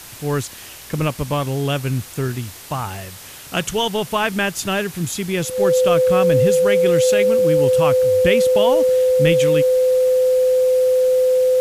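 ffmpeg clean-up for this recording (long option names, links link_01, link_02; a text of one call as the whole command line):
ffmpeg -i in.wav -af "bandreject=frequency=510:width=30,afwtdn=0.014" out.wav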